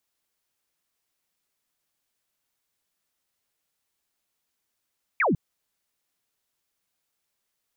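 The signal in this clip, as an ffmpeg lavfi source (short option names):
-f lavfi -i "aevalsrc='0.112*clip(t/0.002,0,1)*clip((0.15-t)/0.002,0,1)*sin(2*PI*2500*0.15/log(130/2500)*(exp(log(130/2500)*t/0.15)-1))':d=0.15:s=44100"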